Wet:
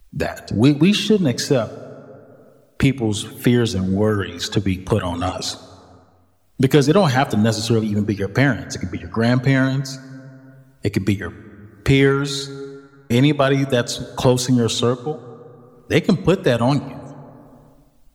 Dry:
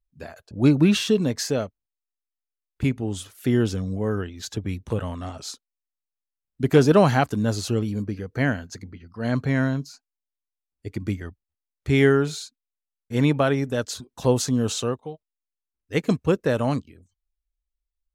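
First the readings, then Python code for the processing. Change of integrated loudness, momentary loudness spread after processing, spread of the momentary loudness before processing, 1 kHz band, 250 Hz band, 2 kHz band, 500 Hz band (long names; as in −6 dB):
+4.5 dB, 13 LU, 19 LU, +5.0 dB, +5.0 dB, +6.0 dB, +4.5 dB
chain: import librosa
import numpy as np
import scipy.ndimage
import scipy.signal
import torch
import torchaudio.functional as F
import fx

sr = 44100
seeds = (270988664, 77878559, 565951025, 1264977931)

p1 = fx.dereverb_blind(x, sr, rt60_s=0.66)
p2 = fx.dynamic_eq(p1, sr, hz=3700.0, q=3.8, threshold_db=-50.0, ratio=4.0, max_db=6)
p3 = 10.0 ** (-22.0 / 20.0) * np.tanh(p2 / 10.0 ** (-22.0 / 20.0))
p4 = p2 + (p3 * 10.0 ** (-8.0 / 20.0))
p5 = fx.rev_plate(p4, sr, seeds[0], rt60_s=1.4, hf_ratio=0.55, predelay_ms=0, drr_db=16.0)
p6 = fx.band_squash(p5, sr, depth_pct=70)
y = p6 * 10.0 ** (5.0 / 20.0)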